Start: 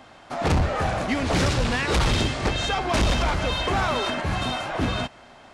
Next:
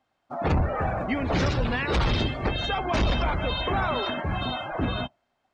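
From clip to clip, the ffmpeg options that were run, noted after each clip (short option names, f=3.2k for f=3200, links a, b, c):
-af "afftdn=nr=25:nf=-31,volume=-2dB"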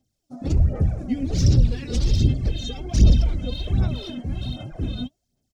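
-af "firequalizer=gain_entry='entry(130,0);entry(970,-28);entry(5500,4)':delay=0.05:min_phase=1,aphaser=in_gain=1:out_gain=1:delay=4.1:decay=0.62:speed=1.3:type=sinusoidal,volume=3.5dB"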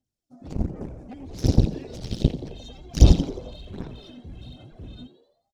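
-filter_complex "[0:a]aeval=exprs='0.501*(cos(1*acos(clip(val(0)/0.501,-1,1)))-cos(1*PI/2))+0.2*(cos(3*acos(clip(val(0)/0.501,-1,1)))-cos(3*PI/2))':c=same,asplit=2[a][b];[b]asplit=5[c][d][e][f][g];[c]adelay=87,afreqshift=110,volume=-14.5dB[h];[d]adelay=174,afreqshift=220,volume=-20.5dB[i];[e]adelay=261,afreqshift=330,volume=-26.5dB[j];[f]adelay=348,afreqshift=440,volume=-32.6dB[k];[g]adelay=435,afreqshift=550,volume=-38.6dB[l];[h][i][j][k][l]amix=inputs=5:normalize=0[m];[a][m]amix=inputs=2:normalize=0,volume=3dB"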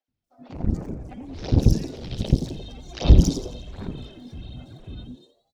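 -filter_complex "[0:a]acrossover=split=500|4500[a][b][c];[a]adelay=80[d];[c]adelay=240[e];[d][b][e]amix=inputs=3:normalize=0,asoftclip=type=tanh:threshold=-5dB,volume=3dB"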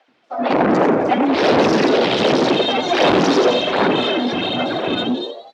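-filter_complex "[0:a]asplit=2[a][b];[b]highpass=f=720:p=1,volume=44dB,asoftclip=type=tanh:threshold=-2.5dB[c];[a][c]amix=inputs=2:normalize=0,lowpass=f=2k:p=1,volume=-6dB,highpass=300,lowpass=3.7k"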